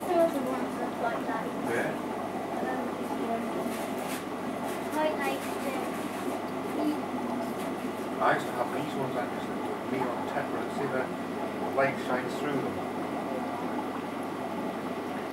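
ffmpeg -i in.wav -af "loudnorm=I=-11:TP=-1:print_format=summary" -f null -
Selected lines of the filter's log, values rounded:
Input Integrated:    -32.0 LUFS
Input True Peak:     -12.8 dBTP
Input LRA:             2.4 LU
Input Threshold:     -42.0 LUFS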